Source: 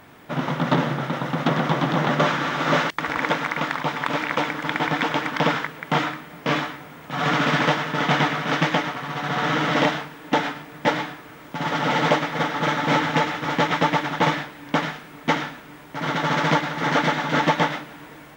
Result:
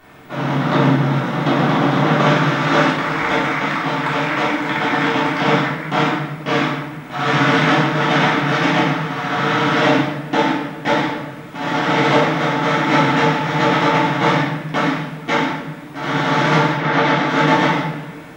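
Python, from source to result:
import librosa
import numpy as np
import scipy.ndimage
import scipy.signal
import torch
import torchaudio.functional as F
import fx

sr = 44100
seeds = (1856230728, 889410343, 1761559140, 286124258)

y = fx.lowpass(x, sr, hz=fx.line((16.74, 3000.0), (17.25, 7600.0)), slope=12, at=(16.74, 17.25), fade=0.02)
y = fx.room_shoebox(y, sr, seeds[0], volume_m3=370.0, walls='mixed', distance_m=3.4)
y = y * librosa.db_to_amplitude(-4.0)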